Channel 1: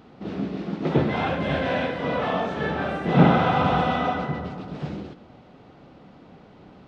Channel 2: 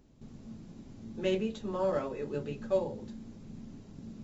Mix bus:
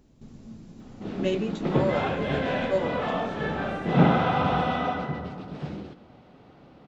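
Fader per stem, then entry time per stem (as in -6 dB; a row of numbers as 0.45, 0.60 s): -3.0, +3.0 dB; 0.80, 0.00 s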